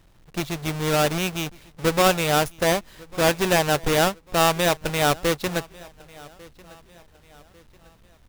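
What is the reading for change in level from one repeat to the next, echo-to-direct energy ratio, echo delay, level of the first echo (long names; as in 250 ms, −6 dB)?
−8.0 dB, −23.0 dB, 1,147 ms, −23.5 dB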